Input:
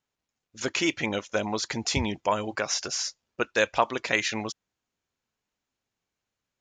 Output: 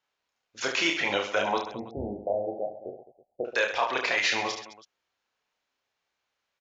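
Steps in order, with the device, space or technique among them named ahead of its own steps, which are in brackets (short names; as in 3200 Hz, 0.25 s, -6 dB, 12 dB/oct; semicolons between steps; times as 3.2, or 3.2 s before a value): DJ mixer with the lows and highs turned down (three-band isolator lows -15 dB, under 450 Hz, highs -23 dB, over 6000 Hz; limiter -19.5 dBFS, peak gain reduction 11 dB); 1.58–3.45 steep low-pass 760 Hz 96 dB/oct; reverse bouncing-ball echo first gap 30 ms, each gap 1.4×, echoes 5; gain +4.5 dB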